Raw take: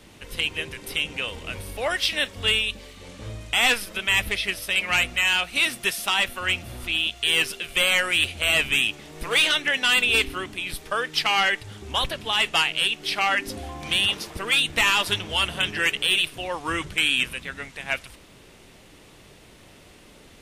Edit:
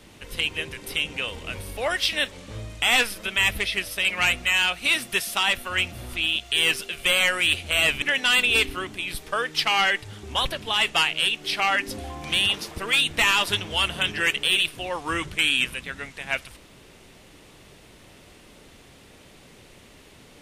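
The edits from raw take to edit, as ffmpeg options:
ffmpeg -i in.wav -filter_complex "[0:a]asplit=3[link_01][link_02][link_03];[link_01]atrim=end=2.322[link_04];[link_02]atrim=start=3.028:end=8.732[link_05];[link_03]atrim=start=9.608[link_06];[link_04][link_05]acrossfade=duration=0.004:curve1=hsin:curve2=hsin[link_07];[link_07][link_06]acrossfade=duration=0.004:curve1=hsin:curve2=hsin" out.wav

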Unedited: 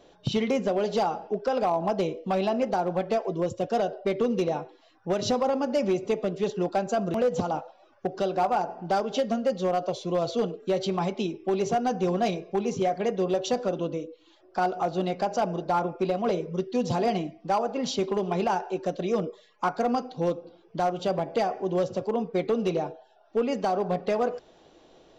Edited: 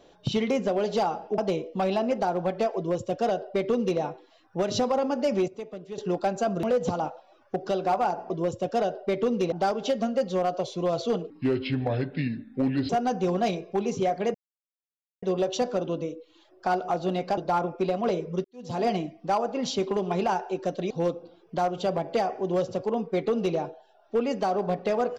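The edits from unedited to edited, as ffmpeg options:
ffmpeg -i in.wav -filter_complex "[0:a]asplit=12[link_01][link_02][link_03][link_04][link_05][link_06][link_07][link_08][link_09][link_10][link_11][link_12];[link_01]atrim=end=1.382[link_13];[link_02]atrim=start=1.888:end=5.992[link_14];[link_03]atrim=start=5.988:end=6.492,asetpts=PTS-STARTPTS,volume=-11dB[link_15];[link_04]atrim=start=6.488:end=8.812[link_16];[link_05]atrim=start=3.278:end=4.502[link_17];[link_06]atrim=start=8.808:end=10.594[link_18];[link_07]atrim=start=10.59:end=11.69,asetpts=PTS-STARTPTS,asetrate=30429,aresample=44100,atrim=end_sample=70304,asetpts=PTS-STARTPTS[link_19];[link_08]atrim=start=11.686:end=13.14,asetpts=PTS-STARTPTS,afade=type=out:start_time=1.45:duration=0.004:curve=hsin,apad=pad_dur=0.88[link_20];[link_09]atrim=start=13.14:end=15.292,asetpts=PTS-STARTPTS,afade=type=in:duration=0.004:curve=hsin[link_21];[link_10]atrim=start=15.578:end=16.65,asetpts=PTS-STARTPTS,afade=type=out:start_time=1.068:duration=0.004:curve=hsin[link_22];[link_11]atrim=start=16.65:end=19.112,asetpts=PTS-STARTPTS,afade=type=in:duration=0.39:curve=qua[link_23];[link_12]atrim=start=20.118[link_24];[link_13][link_14]acrossfade=duration=0.004:curve1=hsin:curve2=hsin[link_25];[link_25][link_15]acrossfade=duration=0.004:curve1=hsin:curve2=hsin[link_26];[link_26][link_16]acrossfade=duration=0.004:curve1=hsin:curve2=hsin[link_27];[link_27][link_17]acrossfade=duration=0.004:curve1=hsin:curve2=hsin[link_28];[link_28][link_18]acrossfade=duration=0.004:curve1=hsin:curve2=hsin[link_29];[link_29][link_19]acrossfade=duration=0.004:curve1=hsin:curve2=hsin[link_30];[link_20][link_21]concat=n=2:v=0:a=1[link_31];[link_30][link_31]acrossfade=duration=0.004:curve1=hsin:curve2=hsin[link_32];[link_22][link_23]concat=n=2:v=0:a=1[link_33];[link_32][link_33]acrossfade=duration=0.004:curve1=hsin:curve2=hsin[link_34];[link_34][link_24]acrossfade=duration=0.004:curve1=hsin:curve2=hsin" out.wav

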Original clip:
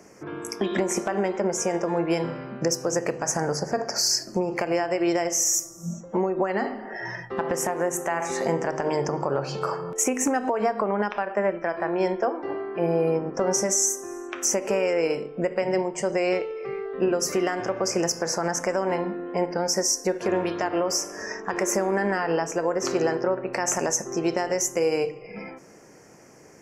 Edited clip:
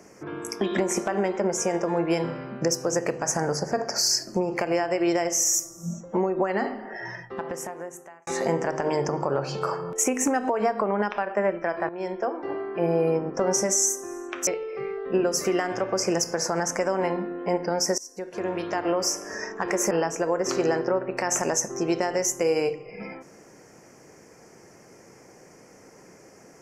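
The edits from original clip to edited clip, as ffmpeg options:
ffmpeg -i in.wav -filter_complex "[0:a]asplit=6[link_01][link_02][link_03][link_04][link_05][link_06];[link_01]atrim=end=8.27,asetpts=PTS-STARTPTS,afade=type=out:start_time=6.67:duration=1.6[link_07];[link_02]atrim=start=8.27:end=11.89,asetpts=PTS-STARTPTS,afade=type=in:duration=0.004:curve=hsin,afade=type=out:start_time=3.616:duration=0.004:curve=hsin:silence=0.211349[link_08];[link_03]atrim=start=11.89:end=14.472,asetpts=PTS-STARTPTS,afade=type=in:duration=0.81:curve=qsin:silence=0.211349[link_09];[link_04]atrim=start=16.348:end=19.86,asetpts=PTS-STARTPTS,afade=type=out:start_time=3.508:duration=0.004:curve=hsin:silence=0.0749894[link_10];[link_05]atrim=start=19.86:end=21.792,asetpts=PTS-STARTPTS,afade=type=in:duration=0.9:silence=0.0749894[link_11];[link_06]atrim=start=22.268[link_12];[link_07][link_08][link_09]concat=n=3:v=0:a=1[link_13];[link_10][link_11]concat=n=2:v=0:a=1[link_14];[link_13][link_14]acrossfade=duration=0.004:curve1=hsin:curve2=hsin[link_15];[link_15][link_12]acrossfade=duration=0.004:curve1=hsin:curve2=hsin" out.wav

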